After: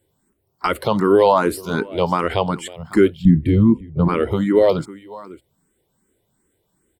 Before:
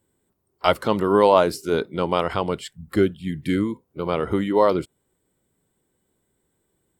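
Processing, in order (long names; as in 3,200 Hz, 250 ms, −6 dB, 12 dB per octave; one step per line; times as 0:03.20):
0:03.25–0:04.08: spectral tilt −4.5 dB per octave
brickwall limiter −8 dBFS, peak gain reduction 7 dB
on a send: single-tap delay 552 ms −19.5 dB
on the sum: frequency shifter mixed with the dry sound +2.6 Hz
level +7 dB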